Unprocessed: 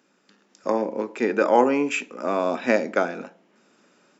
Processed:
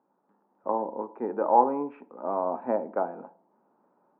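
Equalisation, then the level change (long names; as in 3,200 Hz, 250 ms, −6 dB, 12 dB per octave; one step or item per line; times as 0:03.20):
transistor ladder low-pass 1,000 Hz, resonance 65%
+1.5 dB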